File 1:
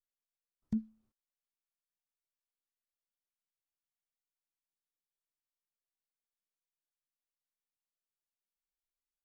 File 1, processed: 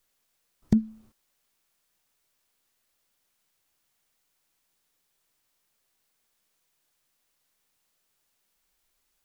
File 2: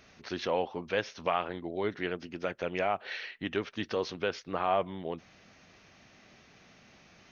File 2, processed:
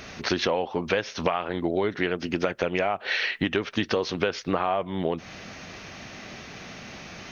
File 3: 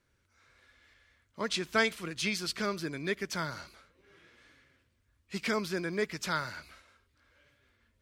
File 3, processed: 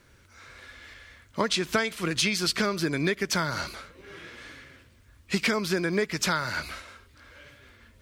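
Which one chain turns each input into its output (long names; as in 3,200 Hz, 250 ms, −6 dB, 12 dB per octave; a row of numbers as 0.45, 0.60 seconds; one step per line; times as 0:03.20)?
downward compressor 12 to 1, threshold −38 dBFS
loudness normalisation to −27 LKFS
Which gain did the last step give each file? +20.5, +17.0, +16.0 decibels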